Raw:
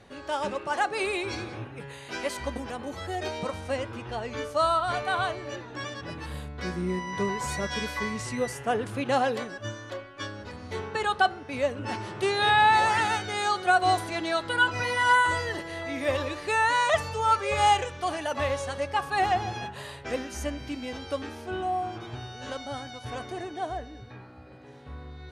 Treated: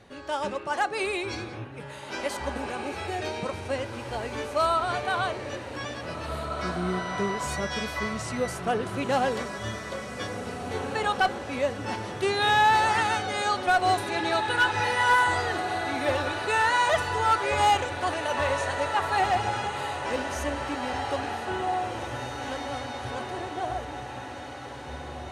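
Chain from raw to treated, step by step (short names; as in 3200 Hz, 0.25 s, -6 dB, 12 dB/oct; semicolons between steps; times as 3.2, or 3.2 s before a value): diffused feedback echo 1.966 s, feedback 56%, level -7.5 dB; one-sided clip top -17 dBFS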